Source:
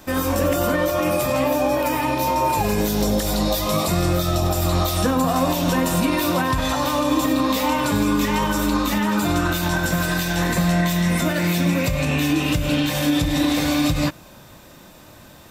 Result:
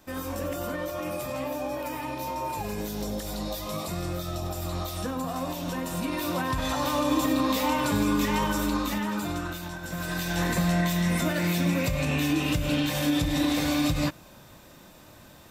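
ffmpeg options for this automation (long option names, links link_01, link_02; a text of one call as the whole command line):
ffmpeg -i in.wav -af "volume=6.5dB,afade=type=in:start_time=5.87:duration=1.13:silence=0.446684,afade=type=out:start_time=8.41:duration=1.39:silence=0.251189,afade=type=in:start_time=9.8:duration=0.6:silence=0.266073" out.wav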